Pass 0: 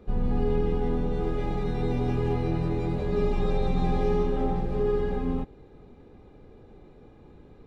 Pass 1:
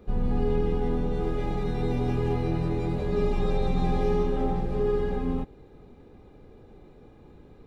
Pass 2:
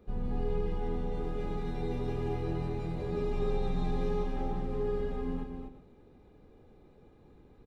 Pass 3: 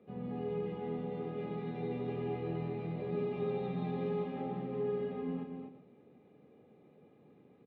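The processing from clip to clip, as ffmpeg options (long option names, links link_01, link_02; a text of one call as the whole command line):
ffmpeg -i in.wav -af "crystalizer=i=0.5:c=0" out.wav
ffmpeg -i in.wav -af "aecho=1:1:246|364:0.501|0.158,volume=-8dB" out.wav
ffmpeg -i in.wav -af "highpass=frequency=140:width=0.5412,highpass=frequency=140:width=1.3066,equalizer=frequency=340:width_type=q:width=4:gain=-4,equalizer=frequency=940:width_type=q:width=4:gain=-7,equalizer=frequency=1500:width_type=q:width=4:gain=-8,lowpass=frequency=3100:width=0.5412,lowpass=frequency=3100:width=1.3066" out.wav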